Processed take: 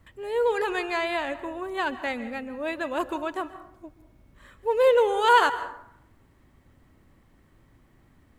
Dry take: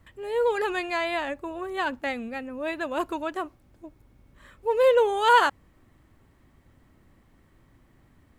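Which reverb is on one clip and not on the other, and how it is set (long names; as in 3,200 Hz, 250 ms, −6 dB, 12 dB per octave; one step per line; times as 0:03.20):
dense smooth reverb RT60 0.74 s, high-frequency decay 0.55×, pre-delay 120 ms, DRR 13 dB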